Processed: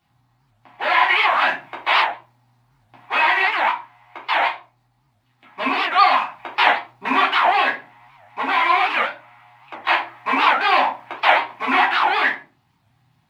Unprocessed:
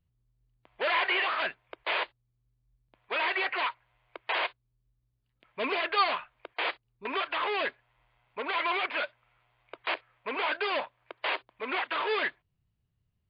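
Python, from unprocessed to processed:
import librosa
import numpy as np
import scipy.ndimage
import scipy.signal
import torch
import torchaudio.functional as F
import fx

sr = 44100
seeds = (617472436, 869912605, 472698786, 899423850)

y = fx.law_mismatch(x, sr, coded='mu')
y = fx.graphic_eq(y, sr, hz=(125, 250, 500, 1000, 2000, 4000), db=(4, 8, -7, 6, 9, 7))
y = fx.rider(y, sr, range_db=3, speed_s=0.5)
y = scipy.signal.sosfilt(scipy.signal.butter(2, 92.0, 'highpass', fs=sr, output='sos'), y)
y = fx.peak_eq(y, sr, hz=810.0, db=13.5, octaves=0.64)
y = fx.room_shoebox(y, sr, seeds[0], volume_m3=190.0, walls='furnished', distance_m=3.4)
y = fx.record_warp(y, sr, rpm=78.0, depth_cents=250.0)
y = y * 10.0 ** (-6.0 / 20.0)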